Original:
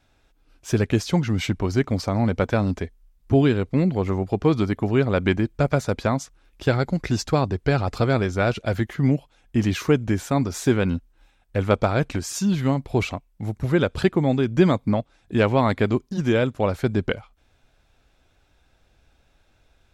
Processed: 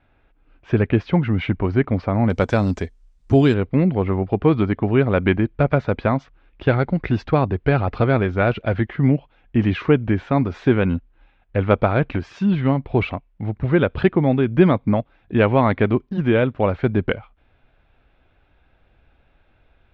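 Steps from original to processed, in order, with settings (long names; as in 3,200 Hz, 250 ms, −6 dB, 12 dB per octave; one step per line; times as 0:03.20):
low-pass filter 2,700 Hz 24 dB per octave, from 0:02.30 8,500 Hz, from 0:03.54 3,000 Hz
level +3 dB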